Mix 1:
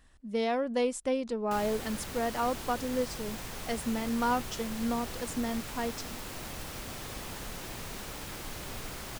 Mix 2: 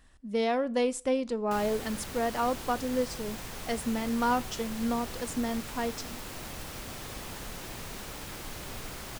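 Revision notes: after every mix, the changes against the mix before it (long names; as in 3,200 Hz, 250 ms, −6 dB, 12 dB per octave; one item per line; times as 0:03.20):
reverb: on, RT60 0.40 s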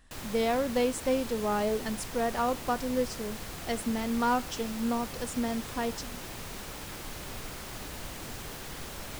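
background: entry −1.40 s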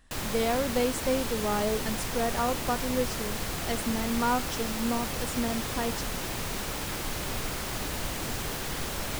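background +7.5 dB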